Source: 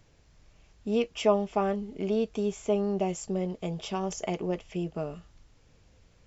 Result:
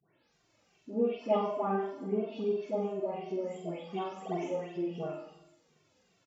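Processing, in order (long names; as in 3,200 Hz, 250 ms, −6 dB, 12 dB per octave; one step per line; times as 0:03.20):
every frequency bin delayed by itself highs late, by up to 363 ms
reverb reduction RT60 0.7 s
treble cut that deepens with the level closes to 1,600 Hz, closed at −27.5 dBFS
high-pass filter 230 Hz 12 dB per octave
flutter between parallel walls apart 7.9 metres, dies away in 0.8 s
four-comb reverb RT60 1.2 s, combs from 29 ms, DRR 14.5 dB
barber-pole flanger 2.1 ms −2.8 Hz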